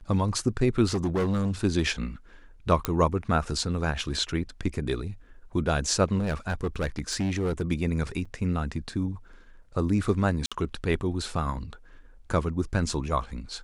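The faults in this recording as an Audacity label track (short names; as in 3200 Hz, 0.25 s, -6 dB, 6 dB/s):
0.850000	1.520000	clipped -22 dBFS
2.850000	2.850000	pop -9 dBFS
6.180000	7.630000	clipped -23 dBFS
8.250000	8.260000	gap 5.1 ms
10.460000	10.520000	gap 56 ms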